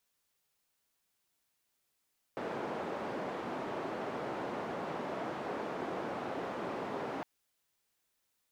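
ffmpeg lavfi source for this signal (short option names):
-f lavfi -i "anoisesrc=c=white:d=4.86:r=44100:seed=1,highpass=f=210,lowpass=f=750,volume=-18.1dB"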